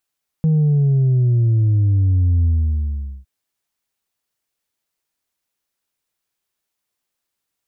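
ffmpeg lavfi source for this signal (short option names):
-f lavfi -i "aevalsrc='0.237*clip((2.81-t)/0.8,0,1)*tanh(1.26*sin(2*PI*160*2.81/log(65/160)*(exp(log(65/160)*t/2.81)-1)))/tanh(1.26)':d=2.81:s=44100"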